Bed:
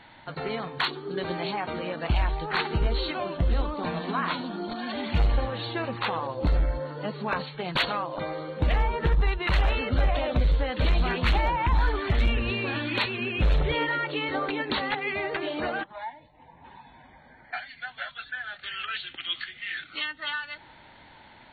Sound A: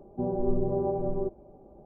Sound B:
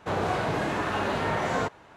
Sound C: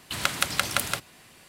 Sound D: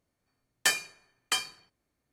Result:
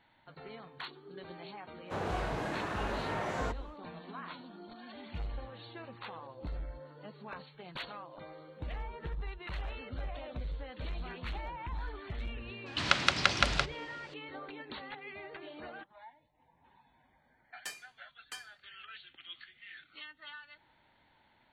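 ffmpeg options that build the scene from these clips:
ffmpeg -i bed.wav -i cue0.wav -i cue1.wav -i cue2.wav -i cue3.wav -filter_complex "[0:a]volume=-16.5dB[link_01];[3:a]lowpass=frequency=5500:width=0.5412,lowpass=frequency=5500:width=1.3066[link_02];[2:a]atrim=end=1.96,asetpts=PTS-STARTPTS,volume=-8.5dB,afade=type=in:duration=0.1,afade=type=out:start_time=1.86:duration=0.1,adelay=1840[link_03];[link_02]atrim=end=1.48,asetpts=PTS-STARTPTS,volume=-0.5dB,afade=type=in:duration=0.004:curve=hsin,afade=type=out:start_time=1.476:duration=0.004:curve=hsin,adelay=12660[link_04];[4:a]atrim=end=2.12,asetpts=PTS-STARTPTS,volume=-17.5dB,afade=type=in:duration=0.004:curve=hsin,afade=type=out:start_time=2.116:duration=0.004:curve=hsin,adelay=749700S[link_05];[link_01][link_03][link_04][link_05]amix=inputs=4:normalize=0" out.wav

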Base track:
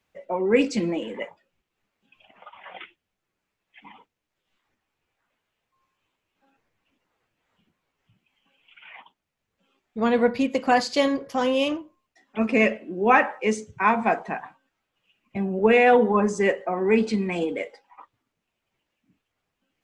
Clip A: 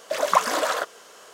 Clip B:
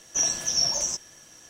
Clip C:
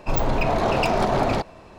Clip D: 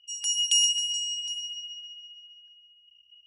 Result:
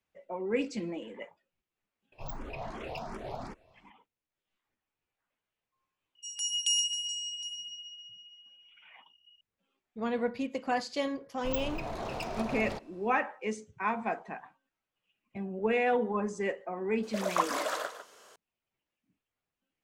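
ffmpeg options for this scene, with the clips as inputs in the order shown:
ffmpeg -i bed.wav -i cue0.wav -i cue1.wav -i cue2.wav -i cue3.wav -filter_complex "[3:a]asplit=2[link_01][link_02];[0:a]volume=-11dB[link_03];[link_01]asplit=2[link_04][link_05];[link_05]afreqshift=2.7[link_06];[link_04][link_06]amix=inputs=2:normalize=1[link_07];[link_02]highshelf=frequency=4800:gain=7.5[link_08];[1:a]aecho=1:1:151:0.282[link_09];[link_07]atrim=end=1.78,asetpts=PTS-STARTPTS,volume=-16.5dB,afade=type=in:duration=0.004:curve=hsin,afade=type=out:start_time=1.776:duration=0.004:curve=hsin,adelay=2120[link_10];[4:a]atrim=end=3.26,asetpts=PTS-STARTPTS,volume=-6dB,afade=type=in:duration=0.004:curve=hsin,afade=type=out:start_time=3.256:duration=0.004:curve=hsin,adelay=6150[link_11];[link_08]atrim=end=1.78,asetpts=PTS-STARTPTS,volume=-16.5dB,afade=type=in:duration=0.004:curve=hsin,afade=type=out:start_time=1.776:duration=0.004:curve=hsin,adelay=11370[link_12];[link_09]atrim=end=1.33,asetpts=PTS-STARTPTS,volume=-9.5dB,afade=type=in:duration=0.004:curve=hsin,afade=type=out:start_time=1.326:duration=0.004:curve=hsin,adelay=17030[link_13];[link_03][link_10][link_11][link_12][link_13]amix=inputs=5:normalize=0" out.wav

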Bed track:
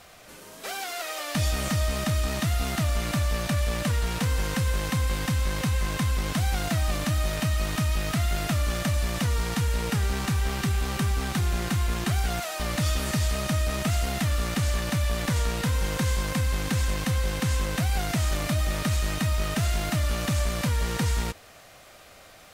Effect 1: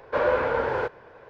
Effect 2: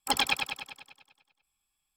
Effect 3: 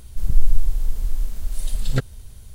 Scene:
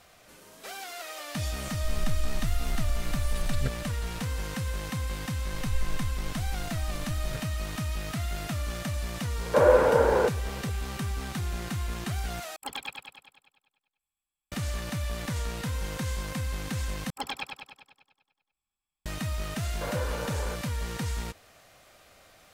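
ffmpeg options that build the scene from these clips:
ffmpeg -i bed.wav -i cue0.wav -i cue1.wav -i cue2.wav -filter_complex "[3:a]asplit=2[link_01][link_02];[1:a]asplit=2[link_03][link_04];[2:a]asplit=2[link_05][link_06];[0:a]volume=-6.5dB[link_07];[link_01]acompressor=threshold=-17dB:ratio=6:attack=3.2:release=140:knee=1:detection=peak[link_08];[link_03]equalizer=frequency=420:width=0.42:gain=10[link_09];[link_05]equalizer=frequency=5500:width=3:gain=-10.5[link_10];[link_06]highshelf=frequency=3000:gain=-8[link_11];[link_07]asplit=3[link_12][link_13][link_14];[link_12]atrim=end=12.564[link_15];[link_10]atrim=end=1.96,asetpts=PTS-STARTPTS,volume=-9.5dB[link_16];[link_13]atrim=start=14.516:end=17.104[link_17];[link_11]atrim=end=1.96,asetpts=PTS-STARTPTS,volume=-5.5dB[link_18];[link_14]atrim=start=19.056[link_19];[link_08]atrim=end=2.54,asetpts=PTS-STARTPTS,volume=-5.5dB,afade=type=in:duration=0.004:curve=hsin,afade=type=out:start_time=2.536:duration=0.004:curve=hsin,adelay=1680[link_20];[link_02]atrim=end=2.54,asetpts=PTS-STARTPTS,volume=-17.5dB,afade=type=in:duration=0.004:curve=hsin,afade=type=out:start_time=2.536:duration=0.004:curve=hsin,adelay=236817S[link_21];[link_09]atrim=end=1.29,asetpts=PTS-STARTPTS,volume=-5dB,afade=type=in:duration=0.004:curve=hsin,afade=type=out:start_time=1.286:duration=0.004:curve=hsin,adelay=9410[link_22];[link_04]atrim=end=1.29,asetpts=PTS-STARTPTS,volume=-12dB,afade=type=in:duration=0.004:curve=hsin,afade=type=out:start_time=1.286:duration=0.004:curve=hsin,adelay=19680[link_23];[link_15][link_16]acrossfade=duration=0.004:curve1=hsin:curve2=hsin[link_24];[link_24][link_17]acrossfade=duration=0.004:curve1=hsin:curve2=hsin[link_25];[link_25][link_18]acrossfade=duration=0.004:curve1=hsin:curve2=hsin[link_26];[link_26][link_19]acrossfade=duration=0.004:curve1=hsin:curve2=hsin[link_27];[link_27][link_20][link_21][link_22][link_23]amix=inputs=5:normalize=0" out.wav

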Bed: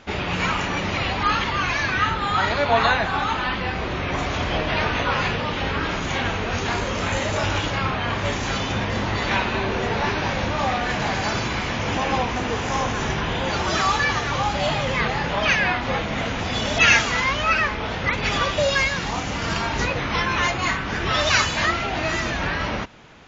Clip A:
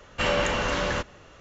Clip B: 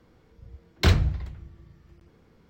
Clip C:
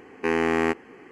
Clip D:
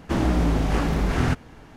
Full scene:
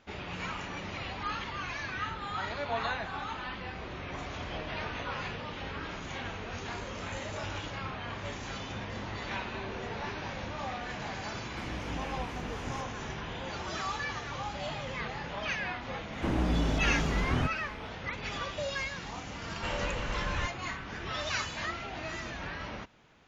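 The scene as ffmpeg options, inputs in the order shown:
ffmpeg -i bed.wav -i cue0.wav -i cue1.wav -i cue2.wav -i cue3.wav -filter_complex "[4:a]asplit=2[link_01][link_02];[0:a]volume=-14.5dB[link_03];[link_01]acrossover=split=490[link_04][link_05];[link_04]aeval=exprs='val(0)*(1-0.5/2+0.5/2*cos(2*PI*4.1*n/s))':channel_layout=same[link_06];[link_05]aeval=exprs='val(0)*(1-0.5/2-0.5/2*cos(2*PI*4.1*n/s))':channel_layout=same[link_07];[link_06][link_07]amix=inputs=2:normalize=0[link_08];[link_02]acrossover=split=2700[link_09][link_10];[link_10]acompressor=threshold=-47dB:ratio=4:attack=1:release=60[link_11];[link_09][link_11]amix=inputs=2:normalize=0[link_12];[1:a]asubboost=boost=11:cutoff=160[link_13];[link_08]atrim=end=1.76,asetpts=PTS-STARTPTS,volume=-17.5dB,afade=type=in:duration=0.004:curve=hsin,afade=type=out:start_time=1.756:duration=0.004:curve=hsin,adelay=11470[link_14];[link_12]atrim=end=1.76,asetpts=PTS-STARTPTS,volume=-7.5dB,afade=type=in:duration=0.004:curve=hsin,afade=type=out:start_time=1.756:duration=0.004:curve=hsin,adelay=16130[link_15];[link_13]atrim=end=1.4,asetpts=PTS-STARTPTS,volume=-11.5dB,afade=type=in:duration=0.004:curve=hsin,afade=type=out:start_time=1.396:duration=0.004:curve=hsin,adelay=19440[link_16];[link_03][link_14][link_15][link_16]amix=inputs=4:normalize=0" out.wav

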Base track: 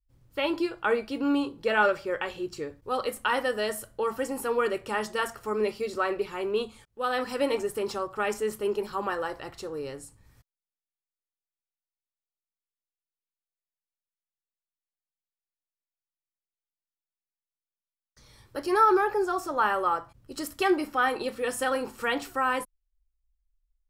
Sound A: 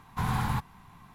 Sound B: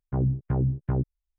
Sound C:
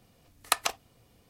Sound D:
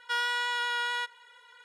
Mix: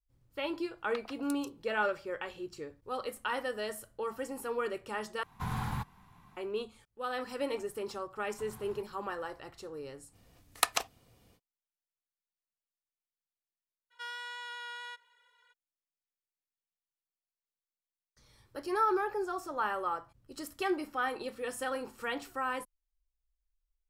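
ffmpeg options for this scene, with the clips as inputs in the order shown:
ffmpeg -i bed.wav -i cue0.wav -i cue1.wav -i cue2.wav -i cue3.wav -filter_complex "[3:a]asplit=2[link_01][link_02];[1:a]asplit=2[link_03][link_04];[0:a]volume=-8dB[link_05];[link_01]acrossover=split=740|4500[link_06][link_07][link_08];[link_06]adelay=100[link_09];[link_08]adelay=350[link_10];[link_09][link_07][link_10]amix=inputs=3:normalize=0[link_11];[link_04]acompressor=threshold=-35dB:ratio=6:attack=3.2:release=140:knee=1:detection=peak[link_12];[link_05]asplit=2[link_13][link_14];[link_13]atrim=end=5.234[link_15];[link_03]atrim=end=1.14,asetpts=PTS-STARTPTS,volume=-6.5dB[link_16];[link_14]atrim=start=6.366[link_17];[link_11]atrim=end=1.29,asetpts=PTS-STARTPTS,volume=-16dB,afade=type=in:duration=0.004:curve=hsin,afade=type=out:start_time=1.286:duration=0.004:curve=hsin,adelay=430[link_18];[link_12]atrim=end=1.14,asetpts=PTS-STARTPTS,volume=-13dB,afade=type=in:duration=0.004:curve=hsin,afade=type=out:start_time=1.136:duration=0.004:curve=hsin,adelay=8220[link_19];[link_02]atrim=end=1.29,asetpts=PTS-STARTPTS,volume=-2dB,afade=type=in:duration=0.05,afade=type=out:start_time=1.24:duration=0.05,adelay=10110[link_20];[4:a]atrim=end=1.64,asetpts=PTS-STARTPTS,volume=-12.5dB,afade=type=in:duration=0.02,afade=type=out:start_time=1.62:duration=0.02,adelay=13900[link_21];[link_15][link_16]acrossfade=duration=0.004:curve1=hsin:curve2=hsin[link_22];[link_22][link_17]acrossfade=duration=0.004:curve1=hsin:curve2=hsin[link_23];[link_23][link_18][link_19][link_20][link_21]amix=inputs=5:normalize=0" out.wav

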